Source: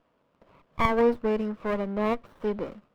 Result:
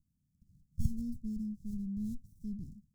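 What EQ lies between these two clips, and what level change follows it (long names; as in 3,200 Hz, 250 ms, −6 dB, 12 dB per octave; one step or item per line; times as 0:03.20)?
inverse Chebyshev band-stop filter 510–2,500 Hz, stop band 60 dB
linear-phase brick-wall band-stop 870–1,800 Hz
parametric band 73 Hz +4 dB 1 octave
0.0 dB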